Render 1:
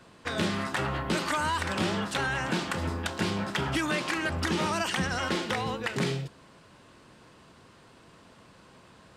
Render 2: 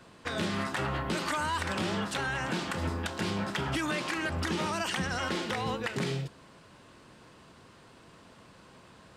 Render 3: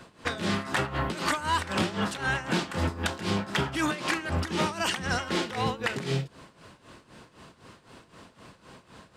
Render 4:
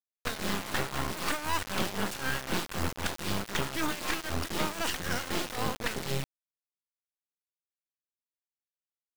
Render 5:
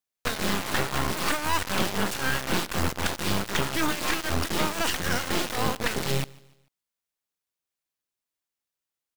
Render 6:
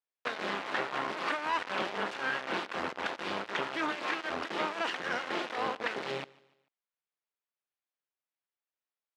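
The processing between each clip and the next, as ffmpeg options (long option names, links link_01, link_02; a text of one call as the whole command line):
ffmpeg -i in.wav -af "alimiter=limit=-22dB:level=0:latency=1:release=153" out.wav
ffmpeg -i in.wav -af "tremolo=f=3.9:d=0.79,volume=6.5dB" out.wav
ffmpeg -i in.wav -af "acrusher=bits=3:dc=4:mix=0:aa=0.000001" out.wav
ffmpeg -i in.wav -filter_complex "[0:a]asplit=2[link_01][link_02];[link_02]alimiter=limit=-24dB:level=0:latency=1:release=143,volume=-2dB[link_03];[link_01][link_03]amix=inputs=2:normalize=0,aecho=1:1:147|294|441:0.0668|0.0274|0.0112,volume=2dB" out.wav
ffmpeg -i in.wav -af "highpass=370,lowpass=2800,volume=-3.5dB" out.wav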